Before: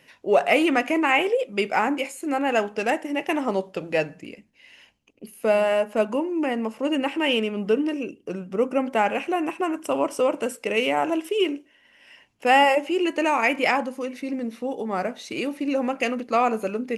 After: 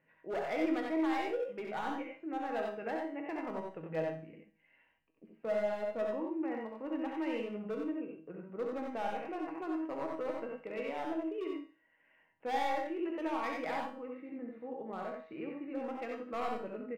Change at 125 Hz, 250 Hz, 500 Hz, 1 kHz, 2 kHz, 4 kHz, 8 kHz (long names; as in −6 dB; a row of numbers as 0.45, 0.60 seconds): −11.5 dB, −12.0 dB, −14.0 dB, −14.5 dB, −18.5 dB, −21.0 dB, below −20 dB